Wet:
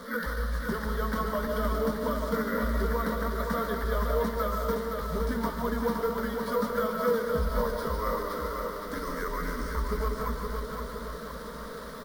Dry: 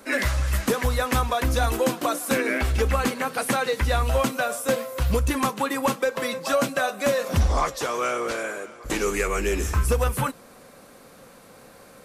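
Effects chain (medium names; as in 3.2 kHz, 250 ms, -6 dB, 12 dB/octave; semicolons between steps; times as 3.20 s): one-bit delta coder 64 kbps, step -27.5 dBFS; low-pass 5.6 kHz 24 dB/octave; static phaser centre 600 Hz, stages 8; de-hum 189.1 Hz, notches 2; pitch shift -2.5 st; doubling 13 ms -12.5 dB; on a send at -4 dB: reverberation RT60 0.90 s, pre-delay 100 ms; on the sum: careless resampling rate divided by 3×, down none, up hold; bit-crushed delay 516 ms, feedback 55%, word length 8-bit, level -5 dB; trim -6 dB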